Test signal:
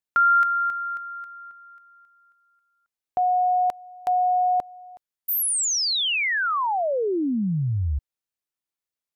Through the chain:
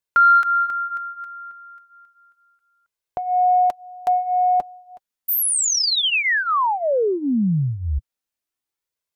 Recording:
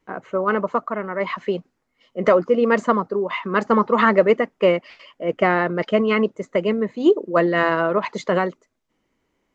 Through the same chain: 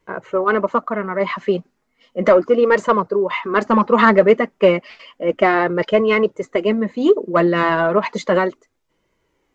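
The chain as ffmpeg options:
-af "acontrast=27,flanger=delay=1.9:depth=3.2:regen=-37:speed=0.33:shape=sinusoidal,volume=1.33"

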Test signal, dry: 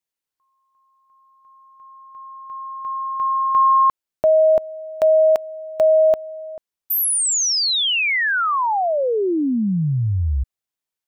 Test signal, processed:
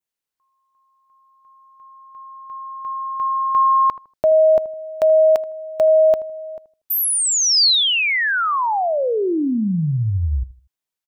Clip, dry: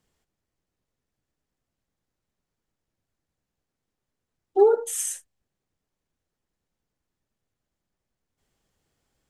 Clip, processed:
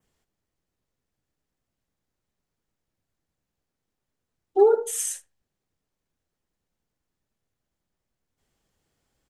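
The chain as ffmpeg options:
-filter_complex "[0:a]adynamicequalizer=threshold=0.0141:dfrequency=4500:dqfactor=2:tfrequency=4500:tqfactor=2:attack=5:release=100:ratio=0.375:range=3:mode=boostabove:tftype=bell,asplit=2[s0][s1];[s1]adelay=79,lowpass=f=1100:p=1,volume=0.158,asplit=2[s2][s3];[s3]adelay=79,lowpass=f=1100:p=1,volume=0.3,asplit=2[s4][s5];[s5]adelay=79,lowpass=f=1100:p=1,volume=0.3[s6];[s2][s4][s6]amix=inputs=3:normalize=0[s7];[s0][s7]amix=inputs=2:normalize=0"

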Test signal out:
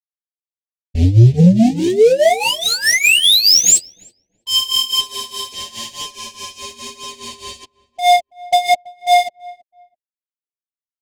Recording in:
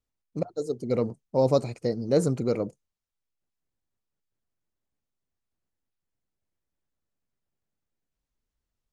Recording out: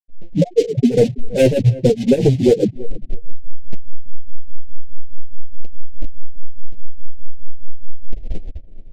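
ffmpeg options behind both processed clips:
-filter_complex "[0:a]aeval=exprs='val(0)+0.5*0.0596*sgn(val(0))':c=same,bandreject=f=68.5:t=h:w=4,bandreject=f=137:t=h:w=4,bandreject=f=205.5:t=h:w=4,bandreject=f=274:t=h:w=4,afftfilt=real='re*gte(hypot(re,im),0.355)':imag='im*gte(hypot(re,im),0.355)':win_size=1024:overlap=0.75,dynaudnorm=f=150:g=9:m=4.47,aresample=16000,acrusher=bits=4:mode=log:mix=0:aa=0.000001,aresample=44100,volume=5.31,asoftclip=hard,volume=0.188,adynamicsmooth=sensitivity=5:basefreq=1800,flanger=delay=6.7:depth=4.3:regen=-3:speed=0.99:shape=sinusoidal,tremolo=f=4.8:d=0.84,asuperstop=centerf=1200:order=4:qfactor=0.66,asplit=2[s0][s1];[s1]adelay=329,lowpass=f=1300:p=1,volume=0.0841,asplit=2[s2][s3];[s3]adelay=329,lowpass=f=1300:p=1,volume=0.23[s4];[s0][s2][s4]amix=inputs=3:normalize=0,alimiter=level_in=7.94:limit=0.891:release=50:level=0:latency=1,volume=0.794"

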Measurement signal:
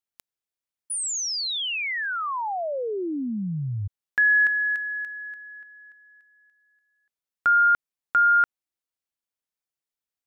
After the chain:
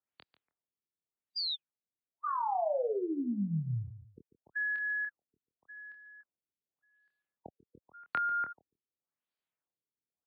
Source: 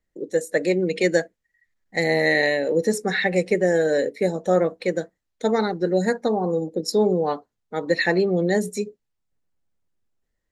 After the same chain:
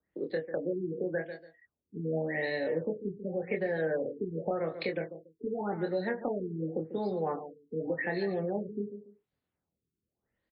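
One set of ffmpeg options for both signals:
-filter_complex "[0:a]highpass=80,acompressor=threshold=0.0282:ratio=2:attack=50:release=143:detection=rms,asplit=2[s0][s1];[s1]aecho=0:1:143|286:0.2|0.0399[s2];[s0][s2]amix=inputs=2:normalize=0,acrossover=split=170|590[s3][s4][s5];[s3]acompressor=threshold=0.0112:ratio=4[s6];[s4]acompressor=threshold=0.0141:ratio=4[s7];[s5]acompressor=threshold=0.02:ratio=4[s8];[s6][s7][s8]amix=inputs=3:normalize=0,asplit=2[s9][s10];[s10]adelay=25,volume=0.562[s11];[s9][s11]amix=inputs=2:normalize=0,afftfilt=real='re*lt(b*sr/1024,430*pow(5100/430,0.5+0.5*sin(2*PI*0.88*pts/sr)))':imag='im*lt(b*sr/1024,430*pow(5100/430,0.5+0.5*sin(2*PI*0.88*pts/sr)))':win_size=1024:overlap=0.75"

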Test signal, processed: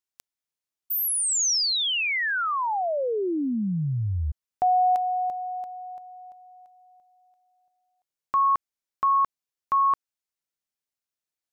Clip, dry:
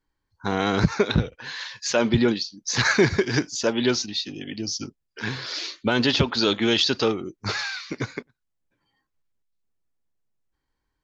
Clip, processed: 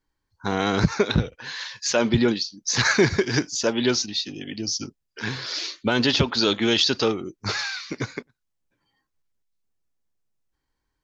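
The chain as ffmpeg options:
-af "equalizer=f=5900:w=1.5:g=3"

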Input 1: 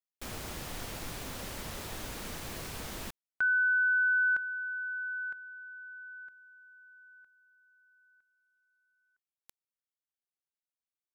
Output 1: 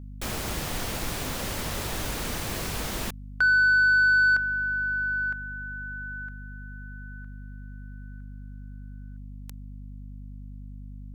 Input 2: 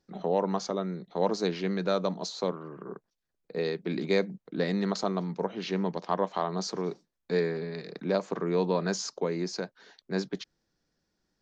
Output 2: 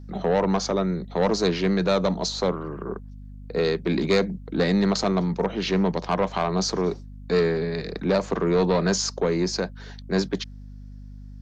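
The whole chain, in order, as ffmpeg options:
-filter_complex "[0:a]acrossover=split=160|3700[s0][s1][s2];[s1]asoftclip=type=tanh:threshold=0.0596[s3];[s0][s3][s2]amix=inputs=3:normalize=0,aeval=exprs='val(0)+0.00398*(sin(2*PI*50*n/s)+sin(2*PI*2*50*n/s)/2+sin(2*PI*3*50*n/s)/3+sin(2*PI*4*50*n/s)/4+sin(2*PI*5*50*n/s)/5)':c=same,volume=2.82"

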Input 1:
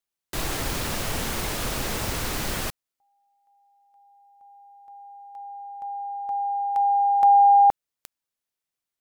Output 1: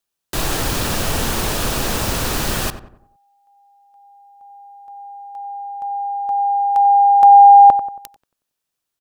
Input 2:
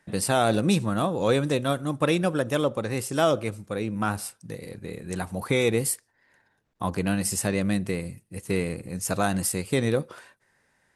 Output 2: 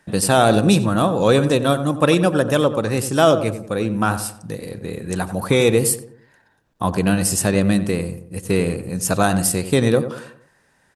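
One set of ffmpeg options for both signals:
-filter_complex "[0:a]equalizer=f=2100:w=7.7:g=-6.5,asplit=2[s0][s1];[s1]adelay=92,lowpass=f=1500:p=1,volume=0.299,asplit=2[s2][s3];[s3]adelay=92,lowpass=f=1500:p=1,volume=0.45,asplit=2[s4][s5];[s5]adelay=92,lowpass=f=1500:p=1,volume=0.45,asplit=2[s6][s7];[s7]adelay=92,lowpass=f=1500:p=1,volume=0.45,asplit=2[s8][s9];[s9]adelay=92,lowpass=f=1500:p=1,volume=0.45[s10];[s0][s2][s4][s6][s8][s10]amix=inputs=6:normalize=0,volume=2.37"

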